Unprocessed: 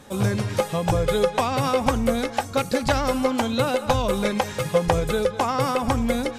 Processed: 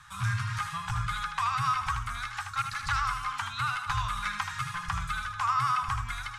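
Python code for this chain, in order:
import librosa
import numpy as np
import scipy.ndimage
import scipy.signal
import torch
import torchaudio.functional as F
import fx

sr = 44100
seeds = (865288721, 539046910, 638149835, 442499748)

p1 = 10.0 ** (-15.0 / 20.0) * np.tanh(x / 10.0 ** (-15.0 / 20.0))
p2 = scipy.signal.sosfilt(scipy.signal.cheby1(3, 1.0, [130.0, 1100.0], 'bandstop', fs=sr, output='sos'), p1)
p3 = fx.peak_eq(p2, sr, hz=1300.0, db=9.5, octaves=1.1)
p4 = p3 + fx.echo_single(p3, sr, ms=78, db=-7.0, dry=0)
p5 = fx.rider(p4, sr, range_db=10, speed_s=2.0)
p6 = scipy.signal.sosfilt(scipy.signal.bessel(4, 9400.0, 'lowpass', norm='mag', fs=sr, output='sos'), p5)
y = F.gain(torch.from_numpy(p6), -7.0).numpy()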